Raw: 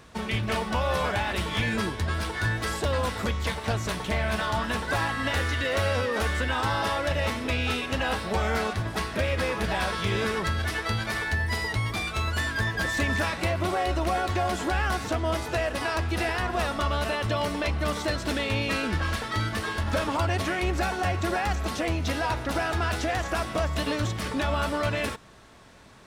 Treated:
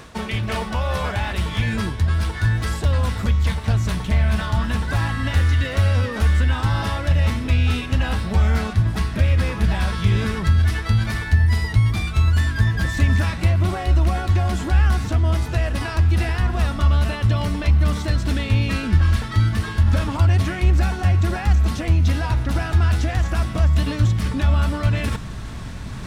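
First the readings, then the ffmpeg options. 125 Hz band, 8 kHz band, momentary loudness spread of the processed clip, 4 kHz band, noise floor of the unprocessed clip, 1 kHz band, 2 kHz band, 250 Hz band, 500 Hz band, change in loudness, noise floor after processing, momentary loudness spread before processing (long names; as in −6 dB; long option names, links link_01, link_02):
+13.0 dB, +0.5 dB, 4 LU, +0.5 dB, −36 dBFS, −1.0 dB, 0.0 dB, +5.0 dB, −2.0 dB, +7.0 dB, −30 dBFS, 3 LU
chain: -af "asubboost=boost=5.5:cutoff=190,areverse,acompressor=mode=upward:threshold=-18dB:ratio=2.5,areverse"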